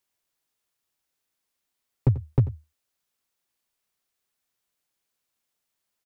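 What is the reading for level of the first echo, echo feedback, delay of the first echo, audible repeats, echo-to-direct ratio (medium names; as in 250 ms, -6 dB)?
-16.0 dB, no regular repeats, 90 ms, 1, -16.0 dB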